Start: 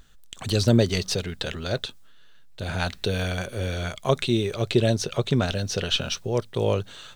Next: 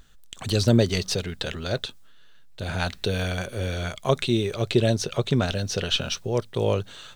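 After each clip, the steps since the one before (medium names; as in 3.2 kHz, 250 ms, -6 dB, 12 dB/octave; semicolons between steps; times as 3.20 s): no audible change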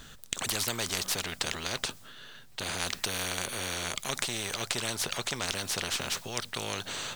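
spectrum-flattening compressor 4:1; trim -1.5 dB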